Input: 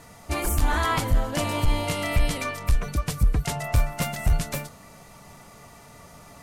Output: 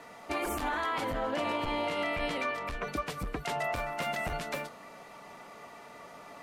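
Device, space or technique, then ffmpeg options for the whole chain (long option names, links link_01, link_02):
DJ mixer with the lows and highs turned down: -filter_complex "[0:a]asettb=1/sr,asplit=3[link_01][link_02][link_03];[link_01]atrim=end=1.124[link_04];[link_02]atrim=start=1.12:end=2.87,asetpts=PTS-STARTPTS,afade=type=in:duration=0.004:curve=qsin,afade=type=out:start_time=1.746:duration=0.004:curve=qsin,highshelf=frequency=6600:gain=-8[link_05];[link_03]atrim=start=2.866[link_06];[link_04][link_05]acrossfade=duration=0.004:curve1=hsin:curve2=qsin[link_07];[link_07][link_06]acrossfade=duration=0.004:curve1=qsin:curve2=hsin,acrossover=split=240 3900:gain=0.0891 1 0.224[link_08][link_09][link_10];[link_08][link_09][link_10]amix=inputs=3:normalize=0,alimiter=level_in=0.5dB:limit=-24dB:level=0:latency=1:release=85,volume=-0.5dB,volume=1.5dB"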